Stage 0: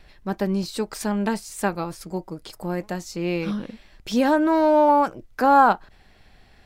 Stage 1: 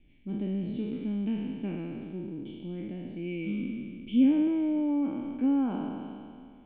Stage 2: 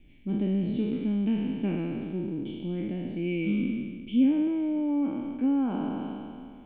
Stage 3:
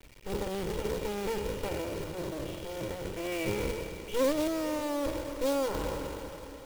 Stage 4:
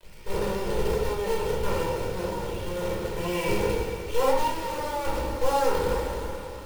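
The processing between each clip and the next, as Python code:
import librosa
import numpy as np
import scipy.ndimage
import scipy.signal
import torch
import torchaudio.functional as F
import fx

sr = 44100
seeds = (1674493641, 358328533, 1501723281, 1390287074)

y1 = fx.spec_trails(x, sr, decay_s=2.18)
y1 = fx.env_lowpass_down(y1, sr, base_hz=2700.0, full_db=-12.5)
y1 = fx.formant_cascade(y1, sr, vowel='i')
y2 = fx.rider(y1, sr, range_db=3, speed_s=0.5)
y2 = y2 * librosa.db_to_amplitude(2.5)
y3 = fx.lower_of_two(y2, sr, delay_ms=2.1)
y3 = fx.quant_companded(y3, sr, bits=4)
y3 = fx.echo_diffused(y3, sr, ms=470, feedback_pct=57, wet_db=-15.0)
y4 = fx.lower_of_two(y3, sr, delay_ms=2.2)
y4 = fx.room_shoebox(y4, sr, seeds[0], volume_m3=730.0, walls='furnished', distance_m=5.0)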